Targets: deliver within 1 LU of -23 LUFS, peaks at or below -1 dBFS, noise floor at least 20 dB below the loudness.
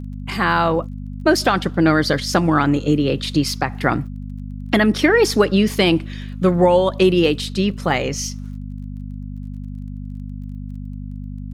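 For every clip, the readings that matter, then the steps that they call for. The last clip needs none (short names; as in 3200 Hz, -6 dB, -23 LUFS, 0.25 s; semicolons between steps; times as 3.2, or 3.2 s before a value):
ticks 20/s; hum 50 Hz; harmonics up to 250 Hz; hum level -27 dBFS; loudness -18.0 LUFS; peak -2.5 dBFS; loudness target -23.0 LUFS
-> de-click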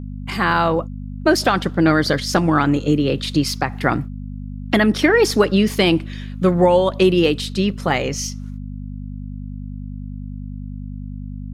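ticks 0.17/s; hum 50 Hz; harmonics up to 250 Hz; hum level -27 dBFS
-> de-hum 50 Hz, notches 5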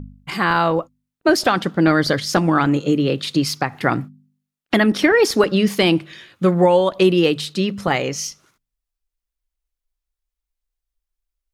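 hum none; loudness -18.0 LUFS; peak -2.5 dBFS; loudness target -23.0 LUFS
-> gain -5 dB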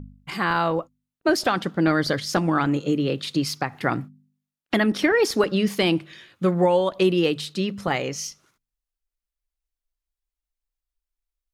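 loudness -23.0 LUFS; peak -7.5 dBFS; noise floor -89 dBFS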